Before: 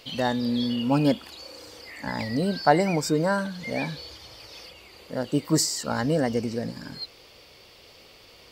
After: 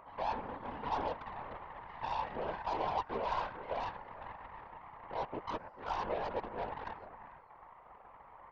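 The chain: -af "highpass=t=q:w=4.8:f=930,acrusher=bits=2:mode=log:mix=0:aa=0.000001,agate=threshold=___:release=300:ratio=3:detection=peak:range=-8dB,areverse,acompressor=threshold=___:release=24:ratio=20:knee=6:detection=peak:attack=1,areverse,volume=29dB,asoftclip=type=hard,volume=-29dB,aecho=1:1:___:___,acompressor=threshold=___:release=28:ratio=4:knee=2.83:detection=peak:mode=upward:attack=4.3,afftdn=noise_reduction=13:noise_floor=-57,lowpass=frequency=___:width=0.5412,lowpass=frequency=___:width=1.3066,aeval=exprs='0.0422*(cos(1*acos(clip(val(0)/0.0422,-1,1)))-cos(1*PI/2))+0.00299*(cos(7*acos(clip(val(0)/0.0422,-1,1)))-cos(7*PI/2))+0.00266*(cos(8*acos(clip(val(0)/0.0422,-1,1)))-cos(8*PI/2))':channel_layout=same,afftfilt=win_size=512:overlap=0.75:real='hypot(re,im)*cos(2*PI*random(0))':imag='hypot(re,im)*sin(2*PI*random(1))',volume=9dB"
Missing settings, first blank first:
-46dB, -33dB, 443, 0.316, -45dB, 1200, 1200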